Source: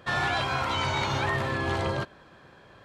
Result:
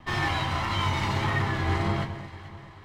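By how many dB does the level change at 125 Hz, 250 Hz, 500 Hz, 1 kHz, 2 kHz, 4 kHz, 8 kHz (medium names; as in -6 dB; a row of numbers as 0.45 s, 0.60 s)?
+4.5 dB, +3.0 dB, -3.0 dB, -0.5 dB, -1.0 dB, -0.5 dB, -1.0 dB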